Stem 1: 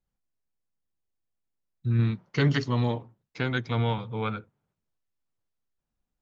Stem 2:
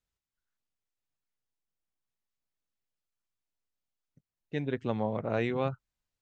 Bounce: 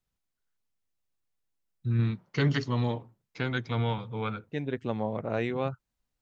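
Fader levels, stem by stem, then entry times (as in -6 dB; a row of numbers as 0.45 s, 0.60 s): -2.5 dB, 0.0 dB; 0.00 s, 0.00 s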